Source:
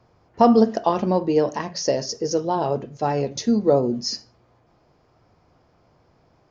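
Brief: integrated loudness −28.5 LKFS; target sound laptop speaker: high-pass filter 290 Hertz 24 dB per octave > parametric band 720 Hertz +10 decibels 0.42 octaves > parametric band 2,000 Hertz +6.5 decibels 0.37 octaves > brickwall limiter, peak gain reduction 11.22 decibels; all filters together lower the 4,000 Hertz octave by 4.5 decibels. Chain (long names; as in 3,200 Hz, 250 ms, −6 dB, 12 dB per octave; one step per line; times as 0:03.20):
high-pass filter 290 Hz 24 dB per octave
parametric band 720 Hz +10 dB 0.42 octaves
parametric band 2,000 Hz +6.5 dB 0.37 octaves
parametric band 4,000 Hz −7 dB
level −6.5 dB
brickwall limiter −16 dBFS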